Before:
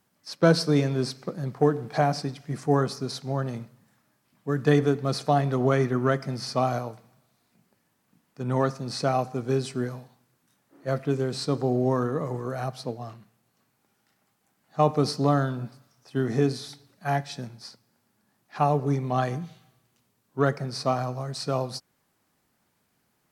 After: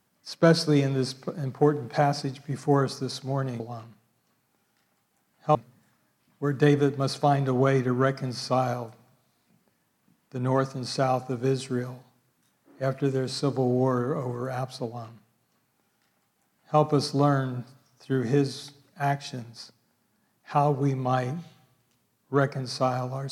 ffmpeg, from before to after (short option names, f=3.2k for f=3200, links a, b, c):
-filter_complex "[0:a]asplit=3[a][b][c];[a]atrim=end=3.602[d];[b]atrim=start=12.898:end=14.852[e];[c]atrim=start=3.598[f];[d][e]acrossfade=d=0.004:c1=hsin:c2=hsin[g];[g][f]acrossfade=d=0.004:c1=hsin:c2=hsin"